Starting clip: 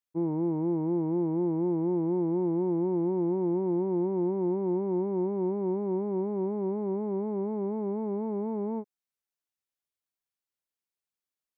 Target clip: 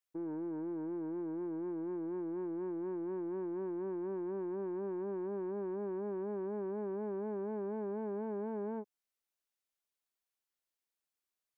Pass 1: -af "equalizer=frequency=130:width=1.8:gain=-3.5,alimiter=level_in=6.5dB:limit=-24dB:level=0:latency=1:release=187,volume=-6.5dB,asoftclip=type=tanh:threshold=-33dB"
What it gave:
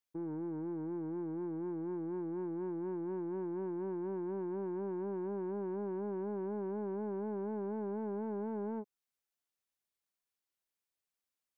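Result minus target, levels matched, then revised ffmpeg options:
125 Hz band +3.5 dB
-af "equalizer=frequency=130:width=1.8:gain=-14,alimiter=level_in=6.5dB:limit=-24dB:level=0:latency=1:release=187,volume=-6.5dB,asoftclip=type=tanh:threshold=-33dB"

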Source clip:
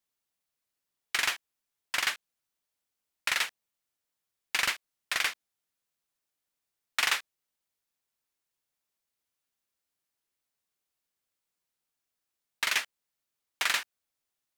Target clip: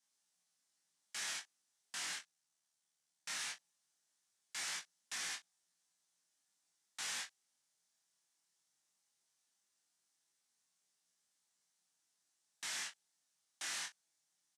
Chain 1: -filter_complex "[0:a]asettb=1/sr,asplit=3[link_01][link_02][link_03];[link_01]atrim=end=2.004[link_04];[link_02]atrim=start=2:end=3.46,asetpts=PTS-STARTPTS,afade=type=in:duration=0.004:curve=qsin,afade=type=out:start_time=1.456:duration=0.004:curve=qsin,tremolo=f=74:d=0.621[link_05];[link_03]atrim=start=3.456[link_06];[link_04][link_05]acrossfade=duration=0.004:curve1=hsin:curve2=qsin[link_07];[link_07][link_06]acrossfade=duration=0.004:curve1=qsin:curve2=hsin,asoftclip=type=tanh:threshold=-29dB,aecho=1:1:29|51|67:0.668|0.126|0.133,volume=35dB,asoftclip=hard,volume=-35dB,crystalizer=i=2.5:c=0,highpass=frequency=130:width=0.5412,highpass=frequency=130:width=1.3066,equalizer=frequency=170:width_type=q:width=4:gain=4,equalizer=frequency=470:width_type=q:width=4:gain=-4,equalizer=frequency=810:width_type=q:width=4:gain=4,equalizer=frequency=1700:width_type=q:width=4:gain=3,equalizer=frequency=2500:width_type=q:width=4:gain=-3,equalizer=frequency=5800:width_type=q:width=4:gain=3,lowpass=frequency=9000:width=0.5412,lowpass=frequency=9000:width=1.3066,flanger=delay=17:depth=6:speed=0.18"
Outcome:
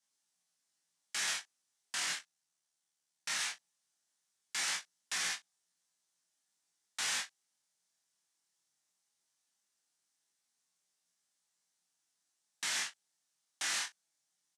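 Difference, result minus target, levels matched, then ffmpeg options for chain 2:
gain into a clipping stage and back: distortion −4 dB
-filter_complex "[0:a]asettb=1/sr,asplit=3[link_01][link_02][link_03];[link_01]atrim=end=2.004[link_04];[link_02]atrim=start=2:end=3.46,asetpts=PTS-STARTPTS,afade=type=in:duration=0.004:curve=qsin,afade=type=out:start_time=1.456:duration=0.004:curve=qsin,tremolo=f=74:d=0.621[link_05];[link_03]atrim=start=3.456[link_06];[link_04][link_05]acrossfade=duration=0.004:curve1=hsin:curve2=qsin[link_07];[link_07][link_06]acrossfade=duration=0.004:curve1=qsin:curve2=hsin,asoftclip=type=tanh:threshold=-29dB,aecho=1:1:29|51|67:0.668|0.126|0.133,volume=43dB,asoftclip=hard,volume=-43dB,crystalizer=i=2.5:c=0,highpass=frequency=130:width=0.5412,highpass=frequency=130:width=1.3066,equalizer=frequency=170:width_type=q:width=4:gain=4,equalizer=frequency=470:width_type=q:width=4:gain=-4,equalizer=frequency=810:width_type=q:width=4:gain=4,equalizer=frequency=1700:width_type=q:width=4:gain=3,equalizer=frequency=2500:width_type=q:width=4:gain=-3,equalizer=frequency=5800:width_type=q:width=4:gain=3,lowpass=frequency=9000:width=0.5412,lowpass=frequency=9000:width=1.3066,flanger=delay=17:depth=6:speed=0.18"

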